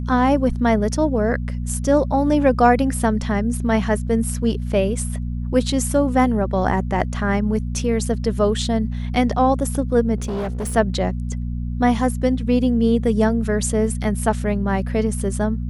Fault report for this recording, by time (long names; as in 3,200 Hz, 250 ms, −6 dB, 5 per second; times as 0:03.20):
mains hum 60 Hz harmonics 4 −25 dBFS
0:10.16–0:10.76: clipping −21.5 dBFS